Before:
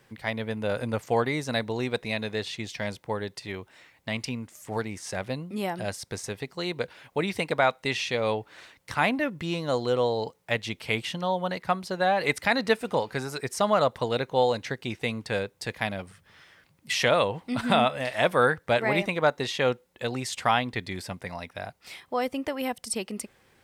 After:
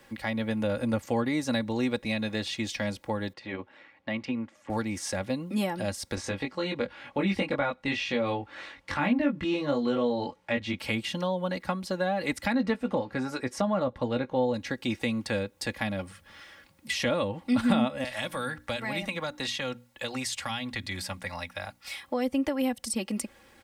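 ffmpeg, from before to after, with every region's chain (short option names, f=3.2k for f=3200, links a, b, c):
-filter_complex "[0:a]asettb=1/sr,asplit=3[a][b][c];[a]atrim=end=3.334[d];[b]atrim=start=3.33:end=4.7,asetpts=PTS-STARTPTS,afade=t=in:d=0.004:c=qsin,afade=t=out:st=1.366:d=0.004:c=qsin,tremolo=f=110:d=0.571,highpass=110,lowpass=2.5k[e];[c]atrim=start=4.696[f];[d][e]acrossfade=d=0.004:c1=hsin:c2=qsin[g];[g][f]acrossfade=d=0.004:c1=qsin:c2=hsin,asettb=1/sr,asplit=3[h][i][j];[h]atrim=end=6.154[k];[i]atrim=start=6.15:end=10.79,asetpts=PTS-STARTPTS,afade=t=in:d=0.004:c=qsin,afade=t=out:st=4.636:d=0.004:c=qsin,lowpass=2.4k,aemphasis=mode=production:type=75fm,asplit=2[l][m];[m]adelay=21,volume=-2dB[n];[l][n]amix=inputs=2:normalize=0,atrim=end_sample=204624[o];[j]atrim=start=10.786[p];[k][o]acrossfade=d=0.004:c1=hsin:c2=qsin[q];[q][p]acrossfade=d=0.004:c1=qsin:c2=hsin,asettb=1/sr,asplit=3[r][s][t];[r]atrim=end=12.524[u];[s]atrim=start=12.52:end=14.54,asetpts=PTS-STARTPTS,afade=t=in:d=0.004:c=qsin,afade=t=out:st=2.016:d=0.004:c=qsin,aemphasis=mode=reproduction:type=75kf,asplit=2[v][w];[w]adelay=16,volume=-11dB[x];[v][x]amix=inputs=2:normalize=0,atrim=end_sample=89082[y];[t]atrim=start=14.536[z];[u][y]acrossfade=d=0.004:c1=hsin:c2=qsin[aa];[aa][z]acrossfade=d=0.004:c1=qsin:c2=hsin,asettb=1/sr,asplit=3[ab][ac][ad];[ab]atrim=end=18.044[ae];[ac]atrim=start=18.04:end=22.03,asetpts=PTS-STARTPTS,afade=t=in:d=0.004:c=qsin,afade=t=out:st=3.986:d=0.004:c=qsin,equalizer=f=330:t=o:w=1.9:g=-9,bandreject=f=60:t=h:w=6,bandreject=f=120:t=h:w=6,bandreject=f=180:t=h:w=6,bandreject=f=240:t=h:w=6,bandreject=f=300:t=h:w=6,acrossover=split=310|3000[af][ag][ah];[ag]acompressor=threshold=-32dB:ratio=6:attack=3.2:release=140:knee=2.83:detection=peak[ai];[af][ai][ah]amix=inputs=3:normalize=0[aj];[ad]atrim=start=22.026[ak];[ae][aj]acrossfade=d=0.004:c1=hsin:c2=qsin[al];[al][ak]acrossfade=d=0.004:c1=qsin:c2=hsin,aecho=1:1:3.6:0.64,acrossover=split=280[am][an];[an]acompressor=threshold=-35dB:ratio=3[ao];[am][ao]amix=inputs=2:normalize=0,volume=3.5dB"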